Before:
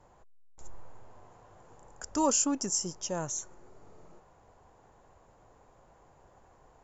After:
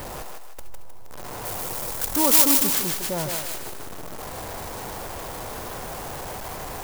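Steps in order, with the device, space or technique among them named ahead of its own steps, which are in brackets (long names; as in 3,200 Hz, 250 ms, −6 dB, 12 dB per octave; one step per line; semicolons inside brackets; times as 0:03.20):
early CD player with a faulty converter (converter with a step at zero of −32 dBFS; converter with an unsteady clock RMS 0.08 ms)
0:01.45–0:02.70: high-shelf EQ 5,000 Hz +10.5 dB
feedback echo with a high-pass in the loop 155 ms, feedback 45%, high-pass 420 Hz, level −3.5 dB
level +2.5 dB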